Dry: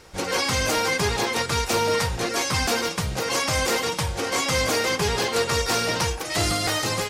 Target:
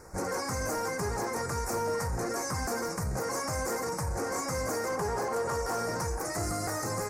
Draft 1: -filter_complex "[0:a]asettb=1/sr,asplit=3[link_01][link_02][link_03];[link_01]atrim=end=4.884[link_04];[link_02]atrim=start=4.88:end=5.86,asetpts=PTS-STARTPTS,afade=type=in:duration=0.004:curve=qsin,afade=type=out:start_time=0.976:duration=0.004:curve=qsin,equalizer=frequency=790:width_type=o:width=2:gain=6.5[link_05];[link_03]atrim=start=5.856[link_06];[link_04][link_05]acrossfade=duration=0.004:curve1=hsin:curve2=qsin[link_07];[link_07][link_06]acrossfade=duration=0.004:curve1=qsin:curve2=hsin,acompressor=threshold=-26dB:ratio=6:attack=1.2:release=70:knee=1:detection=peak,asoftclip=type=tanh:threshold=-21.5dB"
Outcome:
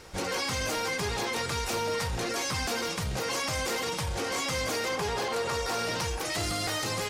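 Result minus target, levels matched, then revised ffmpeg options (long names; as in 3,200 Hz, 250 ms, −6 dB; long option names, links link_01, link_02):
4,000 Hz band +8.0 dB
-filter_complex "[0:a]asettb=1/sr,asplit=3[link_01][link_02][link_03];[link_01]atrim=end=4.884[link_04];[link_02]atrim=start=4.88:end=5.86,asetpts=PTS-STARTPTS,afade=type=in:duration=0.004:curve=qsin,afade=type=out:start_time=0.976:duration=0.004:curve=qsin,equalizer=frequency=790:width_type=o:width=2:gain=6.5[link_05];[link_03]atrim=start=5.856[link_06];[link_04][link_05]acrossfade=duration=0.004:curve1=hsin:curve2=qsin[link_07];[link_07][link_06]acrossfade=duration=0.004:curve1=qsin:curve2=hsin,acompressor=threshold=-26dB:ratio=6:attack=1.2:release=70:knee=1:detection=peak,asuperstop=centerf=3200:order=4:qfactor=0.73,asoftclip=type=tanh:threshold=-21.5dB"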